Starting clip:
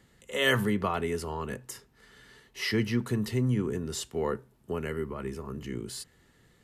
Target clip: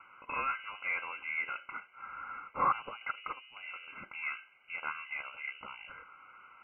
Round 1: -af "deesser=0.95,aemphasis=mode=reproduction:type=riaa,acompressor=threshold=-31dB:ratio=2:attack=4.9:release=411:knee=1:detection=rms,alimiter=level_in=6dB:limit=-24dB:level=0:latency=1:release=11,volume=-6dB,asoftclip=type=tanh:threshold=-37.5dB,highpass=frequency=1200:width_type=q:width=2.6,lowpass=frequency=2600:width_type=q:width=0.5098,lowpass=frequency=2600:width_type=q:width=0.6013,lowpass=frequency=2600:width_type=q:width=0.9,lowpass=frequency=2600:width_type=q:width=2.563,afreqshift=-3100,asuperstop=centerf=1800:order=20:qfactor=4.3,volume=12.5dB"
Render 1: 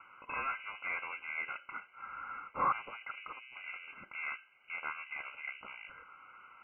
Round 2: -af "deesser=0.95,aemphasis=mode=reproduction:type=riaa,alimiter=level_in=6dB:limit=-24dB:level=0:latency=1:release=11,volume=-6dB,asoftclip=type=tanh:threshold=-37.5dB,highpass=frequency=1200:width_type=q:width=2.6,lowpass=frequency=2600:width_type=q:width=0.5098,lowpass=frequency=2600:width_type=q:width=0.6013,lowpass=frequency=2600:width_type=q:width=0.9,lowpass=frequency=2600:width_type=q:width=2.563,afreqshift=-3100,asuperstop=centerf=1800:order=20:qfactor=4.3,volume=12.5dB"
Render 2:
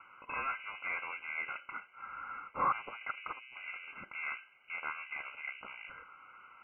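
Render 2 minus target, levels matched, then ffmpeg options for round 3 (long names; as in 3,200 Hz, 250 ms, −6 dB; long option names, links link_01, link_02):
soft clipping: distortion +9 dB
-af "deesser=0.95,aemphasis=mode=reproduction:type=riaa,alimiter=level_in=6dB:limit=-24dB:level=0:latency=1:release=11,volume=-6dB,asoftclip=type=tanh:threshold=-30.5dB,highpass=frequency=1200:width_type=q:width=2.6,lowpass=frequency=2600:width_type=q:width=0.5098,lowpass=frequency=2600:width_type=q:width=0.6013,lowpass=frequency=2600:width_type=q:width=0.9,lowpass=frequency=2600:width_type=q:width=2.563,afreqshift=-3100,asuperstop=centerf=1800:order=20:qfactor=4.3,volume=12.5dB"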